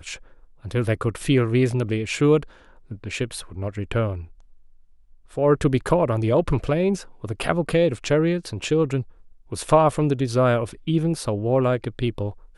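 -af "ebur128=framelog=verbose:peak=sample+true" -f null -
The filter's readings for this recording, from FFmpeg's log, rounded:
Integrated loudness:
  I:         -22.5 LUFS
  Threshold: -33.4 LUFS
Loudness range:
  LRA:         4.4 LU
  Threshold: -43.3 LUFS
  LRA low:   -26.4 LUFS
  LRA high:  -21.9 LUFS
Sample peak:
  Peak:       -3.4 dBFS
True peak:
  Peak:       -3.4 dBFS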